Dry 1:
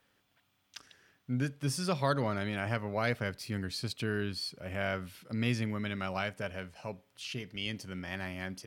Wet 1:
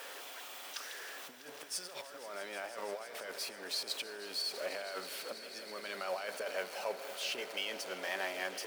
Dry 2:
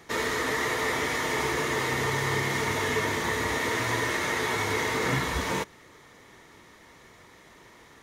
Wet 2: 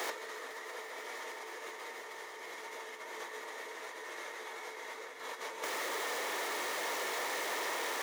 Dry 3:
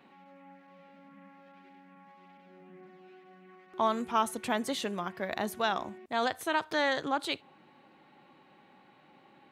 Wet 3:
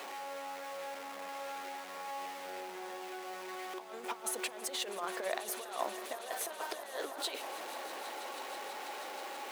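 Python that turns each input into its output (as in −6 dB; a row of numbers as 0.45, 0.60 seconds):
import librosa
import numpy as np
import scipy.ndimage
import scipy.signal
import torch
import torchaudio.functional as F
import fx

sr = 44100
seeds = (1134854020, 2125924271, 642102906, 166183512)

p1 = x + 0.5 * 10.0 ** (-42.5 / 20.0) * np.sign(x)
p2 = fx.over_compress(p1, sr, threshold_db=-36.0, ratio=-0.5)
p3 = fx.ladder_highpass(p2, sr, hz=390.0, resonance_pct=30)
p4 = p3 + fx.echo_swell(p3, sr, ms=162, loudest=5, wet_db=-17, dry=0)
y = F.gain(torch.from_numpy(p4), 4.5).numpy()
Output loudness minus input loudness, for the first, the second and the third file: −5.0, −12.5, −8.5 LU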